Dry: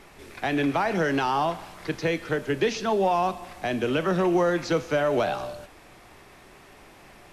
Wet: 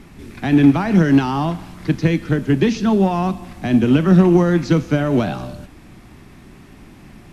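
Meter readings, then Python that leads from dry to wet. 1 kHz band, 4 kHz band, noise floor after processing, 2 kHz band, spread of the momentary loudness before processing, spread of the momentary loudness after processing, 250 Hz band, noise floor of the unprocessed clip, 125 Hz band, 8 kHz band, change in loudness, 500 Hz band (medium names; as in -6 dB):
+1.0 dB, +2.5 dB, -43 dBFS, +2.5 dB, 10 LU, 12 LU, +14.0 dB, -51 dBFS, +16.0 dB, no reading, +9.0 dB, +3.5 dB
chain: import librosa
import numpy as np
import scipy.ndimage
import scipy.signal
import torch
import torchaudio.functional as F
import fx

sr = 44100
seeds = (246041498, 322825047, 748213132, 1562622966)

y = fx.low_shelf_res(x, sr, hz=350.0, db=11.5, q=1.5)
y = fx.cheby_harmonics(y, sr, harmonics=(3, 7), levels_db=(-25, -39), full_scale_db=-5.5)
y = y * librosa.db_to_amplitude(4.0)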